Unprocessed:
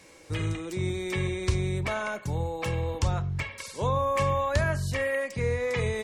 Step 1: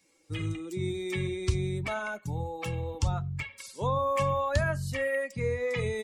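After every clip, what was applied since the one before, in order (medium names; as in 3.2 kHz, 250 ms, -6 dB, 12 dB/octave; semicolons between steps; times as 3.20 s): expander on every frequency bin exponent 1.5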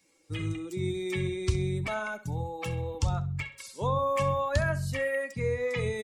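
feedback delay 65 ms, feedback 29%, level -16 dB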